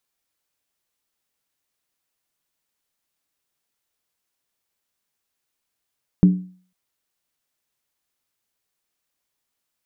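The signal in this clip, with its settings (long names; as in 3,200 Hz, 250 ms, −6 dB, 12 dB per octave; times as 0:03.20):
struck skin length 0.50 s, lowest mode 183 Hz, decay 0.44 s, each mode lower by 11 dB, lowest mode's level −6 dB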